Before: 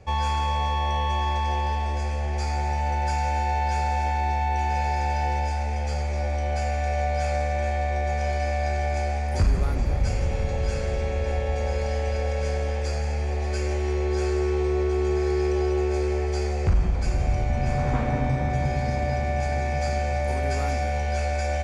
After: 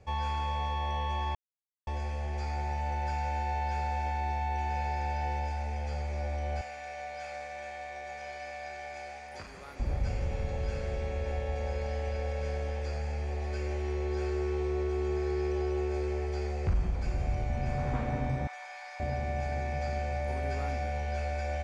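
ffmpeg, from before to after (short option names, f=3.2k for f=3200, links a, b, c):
-filter_complex "[0:a]asettb=1/sr,asplit=3[a][b][c];[a]atrim=end=6.614[d];[b]atrim=start=6.61:end=9.8,asetpts=PTS-STARTPTS,afade=t=in:d=0.004:c=qsin,afade=t=out:st=3.186:d=0.004:c=qsin,highpass=f=1.1k:p=1[e];[c]atrim=start=9.796[f];[d][e]acrossfade=d=0.004:c1=hsin:c2=qsin[g];[g][f]acrossfade=d=0.004:c1=qsin:c2=hsin,asettb=1/sr,asplit=3[h][i][j];[h]atrim=end=18.474[k];[i]atrim=start=18.47:end=19,asetpts=PTS-STARTPTS,afade=t=in:d=0.004:c=qsin,afade=t=out:st=0.526:d=0.004:c=qsin,highpass=f=890:w=0.5412,highpass=f=890:w=1.3066[l];[j]atrim=start=18.996[m];[k][l]acrossfade=d=0.004:c1=hsin:c2=qsin[n];[n][m]acrossfade=d=0.004:c1=qsin:c2=hsin,asplit=3[o][p][q];[o]atrim=end=1.35,asetpts=PTS-STARTPTS,afade=t=out:st=1.346:d=0.004:c=hsin[r];[p]atrim=start=1.35:end=1.87,asetpts=PTS-STARTPTS,volume=0[s];[q]atrim=start=1.87,asetpts=PTS-STARTPTS,afade=t=in:d=0.004:c=hsin[t];[r][s][t]concat=n=3:v=0:a=1,acrossover=split=4700[u][v];[v]acompressor=threshold=-54dB:ratio=4:attack=1:release=60[w];[u][w]amix=inputs=2:normalize=0,volume=-7.5dB"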